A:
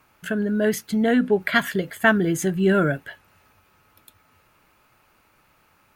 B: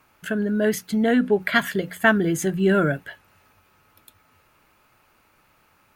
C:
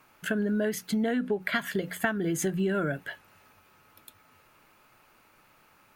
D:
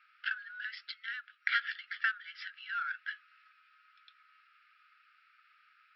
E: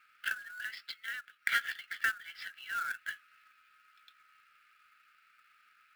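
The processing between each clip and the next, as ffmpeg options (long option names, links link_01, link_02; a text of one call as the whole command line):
ffmpeg -i in.wav -af "bandreject=frequency=60:width_type=h:width=6,bandreject=frequency=120:width_type=h:width=6,bandreject=frequency=180:width_type=h:width=6" out.wav
ffmpeg -i in.wav -af "equalizer=frequency=61:width=1.5:gain=-11,acompressor=threshold=-24dB:ratio=16" out.wav
ffmpeg -i in.wav -af "adynamicsmooth=sensitivity=6:basefreq=3900,afftfilt=real='re*between(b*sr/4096,1200,5600)':imag='im*between(b*sr/4096,1200,5600)':win_size=4096:overlap=0.75" out.wav
ffmpeg -i in.wav -af "acrusher=bits=3:mode=log:mix=0:aa=0.000001" out.wav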